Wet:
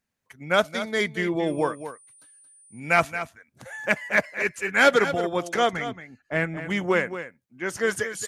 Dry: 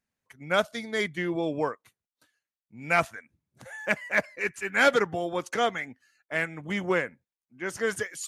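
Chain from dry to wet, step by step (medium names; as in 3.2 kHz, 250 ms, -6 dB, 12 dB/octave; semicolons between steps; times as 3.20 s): 1.46–2.79 s: whistle 9.3 kHz -53 dBFS; 5.73–6.57 s: tilt EQ -2.5 dB/octave; delay 225 ms -11.5 dB; trim +3.5 dB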